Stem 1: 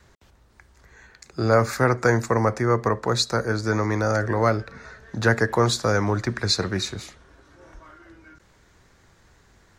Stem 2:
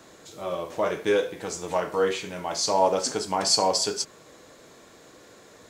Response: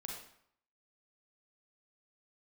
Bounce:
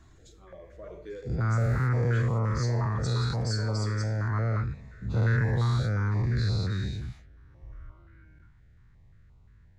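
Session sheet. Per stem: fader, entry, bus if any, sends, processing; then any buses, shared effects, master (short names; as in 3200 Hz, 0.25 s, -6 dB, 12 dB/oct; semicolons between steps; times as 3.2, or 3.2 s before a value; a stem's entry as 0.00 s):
-2.0 dB, 0.00 s, no send, spectral dilation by 0.24 s; EQ curve 120 Hz 0 dB, 340 Hz -17 dB, 1800 Hz -13 dB, 6300 Hz -28 dB
-11.0 dB, 0.00 s, send -6.5 dB, spectral contrast raised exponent 1.5; auto duck -9 dB, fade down 0.25 s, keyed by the first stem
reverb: on, RT60 0.65 s, pre-delay 34 ms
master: stepped notch 5.7 Hz 520–1700 Hz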